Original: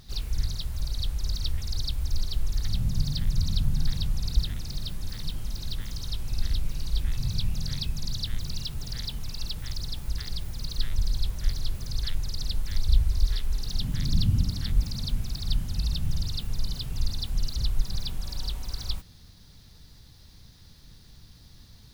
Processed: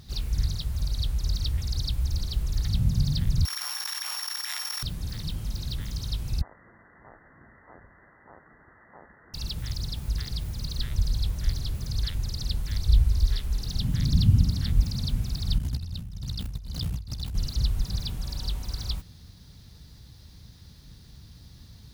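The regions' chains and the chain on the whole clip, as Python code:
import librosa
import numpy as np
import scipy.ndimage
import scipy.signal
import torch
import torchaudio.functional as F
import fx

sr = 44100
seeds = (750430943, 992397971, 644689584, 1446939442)

y = fx.chain(x, sr, fx.sample_sort(block=8),
    fx.steep_highpass(hz=840.0, slope=36),
    fx.env_flatten(amount_pct=100), at=(3.45, 4.83))
y = fx.chain(y, sr, fx.steep_highpass(hz=580.0, slope=96),
    fx.freq_invert(carrier_hz=2600), at=(6.41, 9.34))
y = fx.chain(y, sr, fx.over_compress(threshold_db=-32.0, ratio=-1.0),
    fx.ring_mod(carrier_hz=31.0), at=(15.58, 17.35))
y = scipy.signal.sosfilt(scipy.signal.butter(2, 46.0, 'highpass', fs=sr, output='sos'), y)
y = fx.low_shelf(y, sr, hz=250.0, db=6.0)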